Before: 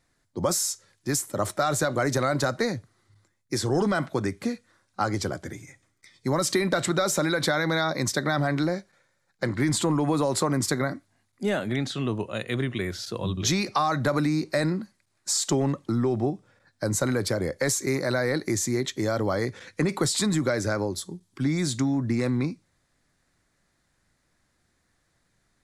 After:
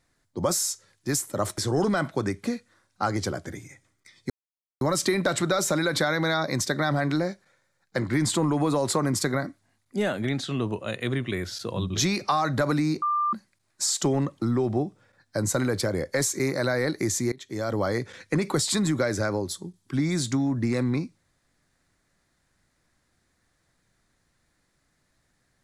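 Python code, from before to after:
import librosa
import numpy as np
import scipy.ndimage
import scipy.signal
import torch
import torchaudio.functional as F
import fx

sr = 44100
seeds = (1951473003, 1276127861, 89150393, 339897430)

y = fx.edit(x, sr, fx.cut(start_s=1.58, length_s=1.98),
    fx.insert_silence(at_s=6.28, length_s=0.51),
    fx.bleep(start_s=14.49, length_s=0.31, hz=1190.0, db=-21.5),
    fx.fade_in_from(start_s=18.79, length_s=0.47, floor_db=-23.5), tone=tone)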